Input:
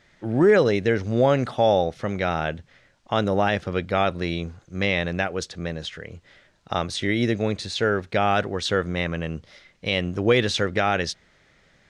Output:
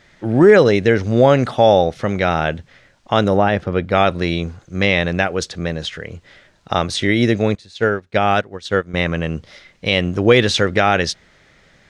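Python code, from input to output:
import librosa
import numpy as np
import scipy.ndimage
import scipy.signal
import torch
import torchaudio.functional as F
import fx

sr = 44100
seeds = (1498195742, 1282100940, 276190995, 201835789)

y = fx.high_shelf(x, sr, hz=2700.0, db=-11.5, at=(3.37, 3.92))
y = fx.upward_expand(y, sr, threshold_db=-31.0, expansion=2.5, at=(7.55, 8.94))
y = y * librosa.db_to_amplitude(7.0)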